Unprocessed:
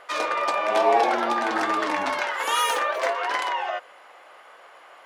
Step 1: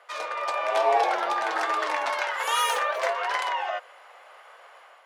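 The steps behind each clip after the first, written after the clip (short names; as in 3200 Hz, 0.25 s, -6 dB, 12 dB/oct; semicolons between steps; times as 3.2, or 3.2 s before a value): AGC gain up to 6 dB; HPF 440 Hz 24 dB/oct; gain -7 dB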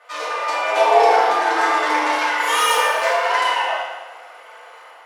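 FDN reverb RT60 1.2 s, low-frequency decay 1.45×, high-frequency decay 0.95×, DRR -8 dB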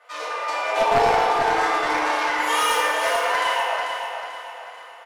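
one-sided fold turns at -9.5 dBFS; feedback echo 0.441 s, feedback 41%, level -7 dB; gain -4 dB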